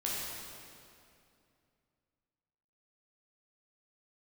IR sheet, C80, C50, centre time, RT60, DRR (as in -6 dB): -0.5 dB, -2.5 dB, 146 ms, 2.5 s, -6.0 dB